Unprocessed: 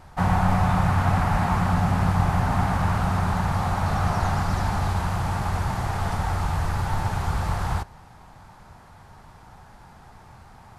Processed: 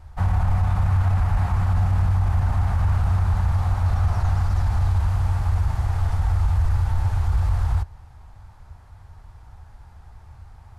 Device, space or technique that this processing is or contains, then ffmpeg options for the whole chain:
car stereo with a boomy subwoofer: -af "lowshelf=frequency=120:width_type=q:width=1.5:gain=13,alimiter=limit=-6.5dB:level=0:latency=1:release=19,volume=-6.5dB"

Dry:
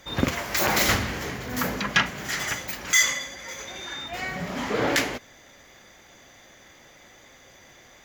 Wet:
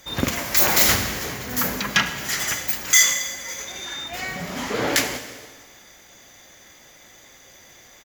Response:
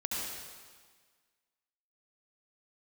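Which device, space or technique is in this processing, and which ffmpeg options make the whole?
keyed gated reverb: -filter_complex "[0:a]highshelf=frequency=5300:gain=11.5,asplit=2[link_01][link_02];[link_02]adelay=198,lowpass=frequency=2000:poles=1,volume=-23dB,asplit=2[link_03][link_04];[link_04]adelay=198,lowpass=frequency=2000:poles=1,volume=0.54,asplit=2[link_05][link_06];[link_06]adelay=198,lowpass=frequency=2000:poles=1,volume=0.54,asplit=2[link_07][link_08];[link_08]adelay=198,lowpass=frequency=2000:poles=1,volume=0.54[link_09];[link_01][link_03][link_05][link_07][link_09]amix=inputs=5:normalize=0,asplit=3[link_10][link_11][link_12];[1:a]atrim=start_sample=2205[link_13];[link_11][link_13]afir=irnorm=-1:irlink=0[link_14];[link_12]apad=whole_len=378734[link_15];[link_14][link_15]sidechaingate=range=-33dB:threshold=-48dB:ratio=16:detection=peak,volume=-13dB[link_16];[link_10][link_16]amix=inputs=2:normalize=0,volume=-1.5dB"

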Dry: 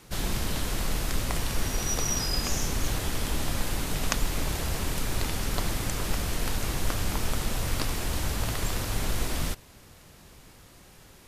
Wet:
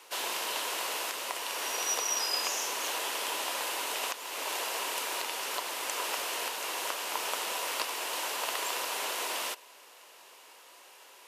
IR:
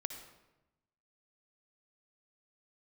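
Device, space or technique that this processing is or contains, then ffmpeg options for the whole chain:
laptop speaker: -af "highpass=frequency=440:width=0.5412,highpass=frequency=440:width=1.3066,equalizer=frequency=980:width_type=o:width=0.22:gain=8,equalizer=frequency=2800:width_type=o:width=0.35:gain=6,alimiter=limit=-16.5dB:level=0:latency=1:release=389"

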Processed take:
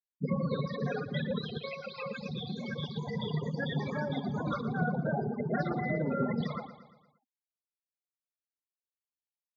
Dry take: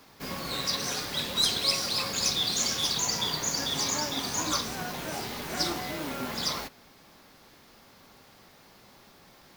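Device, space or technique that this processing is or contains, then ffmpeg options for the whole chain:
bass amplifier: -filter_complex "[0:a]asettb=1/sr,asplit=3[link_01][link_02][link_03];[link_01]atrim=end=1.574[link_04];[link_02]atrim=start=1.57:end=2.25,asetpts=PTS-STARTPTS,afade=type=in:duration=0.004:curve=qsin,afade=type=out:start_time=0.676:duration=0.004:curve=qsin,lowshelf=frequency=460:gain=-4.5[link_05];[link_03]atrim=start=2.246[link_06];[link_04][link_05]acrossfade=duration=0.004:curve1=hsin:curve2=qsin[link_07];[link_07][link_06]acrossfade=duration=0.004:curve1=qsin:curve2=hsin,afftfilt=real='re*gte(hypot(re,im),0.0501)':imag='im*gte(hypot(re,im),0.0501)':win_size=1024:overlap=0.75,aecho=1:1:116|232|348|464|580:0.178|0.0925|0.0481|0.025|0.013,acompressor=threshold=-32dB:ratio=4,highpass=77,equalizer=frequency=150:width_type=q:width=4:gain=10,equalizer=frequency=210:width_type=q:width=4:gain=6,equalizer=frequency=310:width_type=q:width=4:gain=-8,equalizer=frequency=470:width_type=q:width=4:gain=10,equalizer=frequency=990:width_type=q:width=4:gain=-10,equalizer=frequency=1800:width_type=q:width=4:gain=8,lowpass=frequency=2300:width=0.5412,lowpass=frequency=2300:width=1.3066,volume=5.5dB"

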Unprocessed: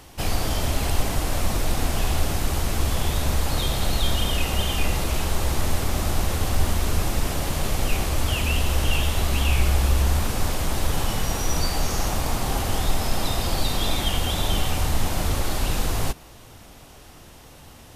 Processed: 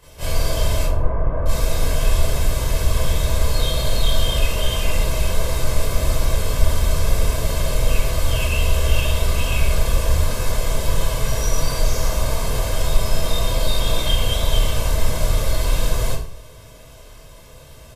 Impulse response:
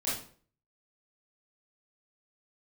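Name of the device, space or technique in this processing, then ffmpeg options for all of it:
microphone above a desk: -filter_complex "[0:a]asettb=1/sr,asplit=3[link_01][link_02][link_03];[link_01]atrim=end=0.834[link_04];[link_02]atrim=start=0.83:end=1.46,asetpts=PTS-STARTPTS,afade=type=in:duration=0.004:curve=qsin,afade=type=out:start_time=0.626:duration=0.004:curve=qsin,lowpass=frequency=1400:width=0.5412,lowpass=frequency=1400:width=1.3066[link_05];[link_03]atrim=start=1.456[link_06];[link_04][link_05]acrossfade=duration=0.004:curve1=hsin:curve2=qsin[link_07];[link_07][link_06]acrossfade=duration=0.004:curve1=qsin:curve2=hsin,aecho=1:1:1.9:0.64[link_08];[1:a]atrim=start_sample=2205[link_09];[link_08][link_09]afir=irnorm=-1:irlink=0,volume=-5.5dB"

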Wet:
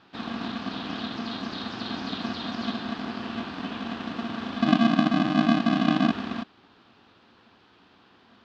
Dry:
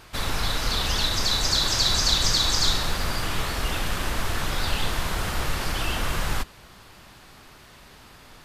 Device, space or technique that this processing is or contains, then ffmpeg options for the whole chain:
ring modulator pedal into a guitar cabinet: -filter_complex "[0:a]acrossover=split=3200[link_01][link_02];[link_02]acompressor=threshold=-33dB:ratio=4:attack=1:release=60[link_03];[link_01][link_03]amix=inputs=2:normalize=0,asettb=1/sr,asplit=3[link_04][link_05][link_06];[link_04]atrim=end=4.624[link_07];[link_05]atrim=start=4.62:end=6.11,asetpts=PTS-STARTPTS,afade=type=in:duration=0.004:curve=qsin,afade=type=out:start_time=1.486:duration=0.004:curve=qsin,lowshelf=frequency=110:width_type=q:width=3:gain=11[link_08];[link_06]atrim=start=6.106[link_09];[link_07][link_08]acrossfade=duration=0.004:curve1=hsin:curve2=qsin[link_10];[link_10][link_09]acrossfade=duration=0.004:curve1=qsin:curve2=hsin,aeval=exprs='val(0)*sgn(sin(2*PI*230*n/s))':channel_layout=same,highpass=89,equalizer=frequency=150:width_type=q:width=4:gain=-9,equalizer=frequency=590:width_type=q:width=4:gain=-6,equalizer=frequency=2100:width_type=q:width=4:gain=-8,lowpass=frequency=4000:width=0.5412,lowpass=frequency=4000:width=1.3066,volume=-6.5dB"

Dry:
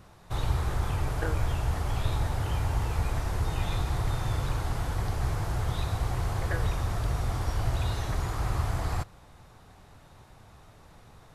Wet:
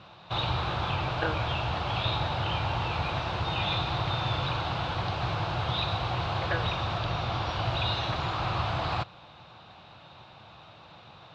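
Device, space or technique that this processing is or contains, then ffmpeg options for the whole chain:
kitchen radio: -filter_complex "[0:a]highpass=160,equalizer=frequency=190:width_type=q:width=4:gain=-3,equalizer=frequency=260:width_type=q:width=4:gain=-9,equalizer=frequency=420:width_type=q:width=4:gain=-9,equalizer=frequency=1900:width_type=q:width=4:gain=-7,equalizer=frequency=2700:width_type=q:width=4:gain=6,equalizer=frequency=3800:width_type=q:width=4:gain=7,lowpass=frequency=4200:width=0.5412,lowpass=frequency=4200:width=1.3066,asettb=1/sr,asplit=3[link_01][link_02][link_03];[link_01]atrim=end=6.984[link_04];[link_02]atrim=start=6.98:end=7.52,asetpts=PTS-STARTPTS,afade=type=in:duration=0.004:curve=qsin,afade=type=out:start_time=0.536:duration=0.004:curve=qsin,equalizer=frequency=8400:width_type=o:width=0.21:gain=-6.5[link_05];[link_03]atrim=start=7.516[link_06];[link_04][link_05]acrossfade=duration=0.004:curve1=hsin:curve2=qsin[link_07];[link_07][link_06]acrossfade=duration=0.004:curve1=qsin:curve2=hsin,volume=7dB"

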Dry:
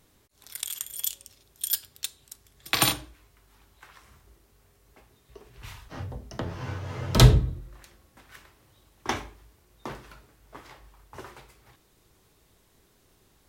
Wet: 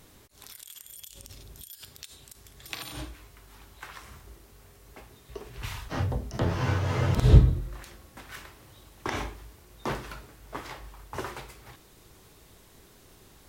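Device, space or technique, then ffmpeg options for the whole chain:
de-esser from a sidechain: -filter_complex "[0:a]asplit=2[link_01][link_02];[link_02]highpass=frequency=4800:width=0.5412,highpass=frequency=4800:width=1.3066,apad=whole_len=594507[link_03];[link_01][link_03]sidechaincompress=threshold=-51dB:ratio=12:attack=3.5:release=40,asettb=1/sr,asplit=3[link_04][link_05][link_06];[link_04]atrim=end=0.964[link_07];[link_05]atrim=start=0.96:end=1.69,asetpts=PTS-STARTPTS,afade=type=in:duration=0.004:curve=qsin,afade=type=out:start_time=0.726:duration=0.004:curve=qsin,lowshelf=frequency=230:gain=10.5[link_08];[link_06]atrim=start=1.686[link_09];[link_07][link_08]acrossfade=duration=0.004:curve1=hsin:curve2=qsin[link_10];[link_10][link_09]acrossfade=duration=0.004:curve1=qsin:curve2=hsin,volume=8dB"

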